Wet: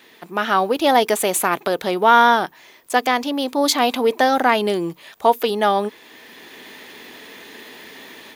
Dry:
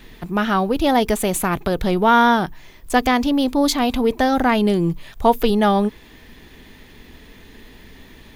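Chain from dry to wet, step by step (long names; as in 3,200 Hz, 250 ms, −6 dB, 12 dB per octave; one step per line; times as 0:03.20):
high-pass filter 390 Hz 12 dB per octave
automatic gain control gain up to 9.5 dB
level −1 dB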